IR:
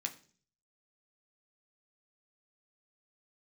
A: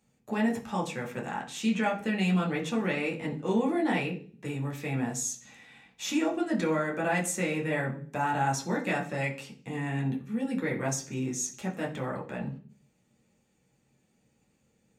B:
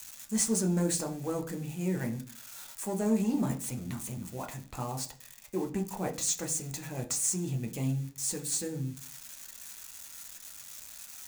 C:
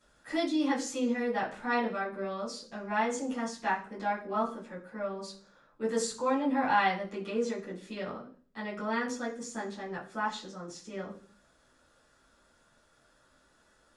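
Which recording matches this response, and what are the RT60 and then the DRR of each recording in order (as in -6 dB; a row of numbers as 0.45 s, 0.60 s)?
B; 0.45 s, 0.45 s, 0.45 s; -2.5 dB, 2.5 dB, -10.0 dB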